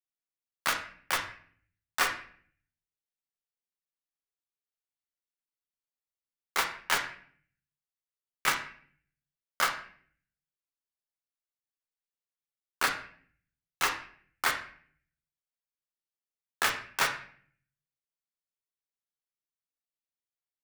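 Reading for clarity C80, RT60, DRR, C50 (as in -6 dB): 12.0 dB, 0.50 s, 2.0 dB, 8.0 dB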